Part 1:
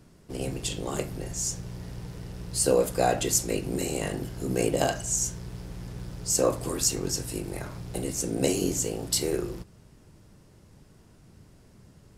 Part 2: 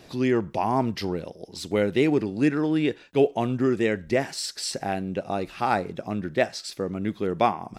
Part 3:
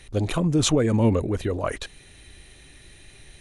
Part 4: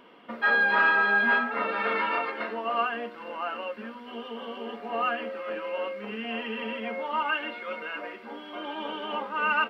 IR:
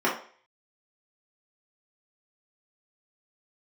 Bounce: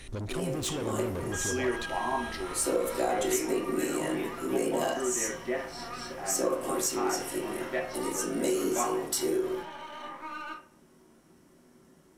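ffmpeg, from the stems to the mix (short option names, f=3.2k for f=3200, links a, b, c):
-filter_complex "[0:a]equalizer=f=13k:t=o:w=2.1:g=9.5,asoftclip=type=tanh:threshold=-6.5dB,volume=-13.5dB,asplit=2[a][b];[b]volume=-4dB[c];[1:a]highpass=f=850:p=1,adelay=1350,volume=-6dB,asplit=2[d][e];[e]volume=-13.5dB[f];[2:a]asoftclip=type=tanh:threshold=-27dB,acompressor=threshold=-36dB:ratio=6,volume=1.5dB,asplit=2[g][h];[3:a]highpass=f=620:w=0.5412,highpass=f=620:w=1.3066,acompressor=threshold=-36dB:ratio=4,aeval=exprs='max(val(0),0)':c=same,adelay=900,volume=-8dB,asplit=2[i][j];[j]volume=-8dB[k];[h]apad=whole_len=402791[l];[d][l]sidechaingate=range=-33dB:threshold=-43dB:ratio=16:detection=peak[m];[4:a]atrim=start_sample=2205[n];[c][f][k]amix=inputs=3:normalize=0[o];[o][n]afir=irnorm=-1:irlink=0[p];[a][m][g][i][p]amix=inputs=5:normalize=0,acompressor=threshold=-25dB:ratio=3"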